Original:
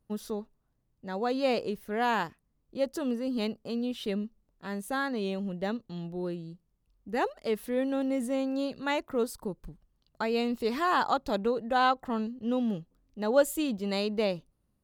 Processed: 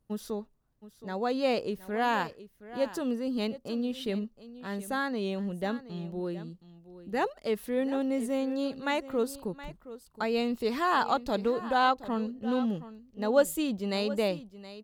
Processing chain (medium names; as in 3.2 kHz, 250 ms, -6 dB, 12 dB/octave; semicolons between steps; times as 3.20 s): delay 720 ms -15.5 dB